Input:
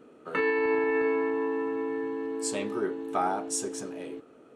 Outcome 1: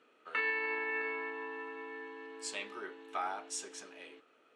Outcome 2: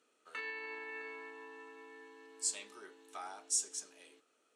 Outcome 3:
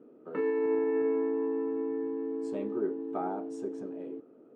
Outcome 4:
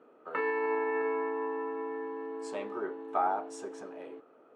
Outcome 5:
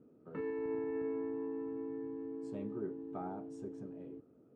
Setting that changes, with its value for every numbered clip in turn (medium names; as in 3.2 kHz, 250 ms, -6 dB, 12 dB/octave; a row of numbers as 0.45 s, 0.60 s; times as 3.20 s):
band-pass filter, frequency: 2.7 kHz, 6.9 kHz, 310 Hz, 890 Hz, 110 Hz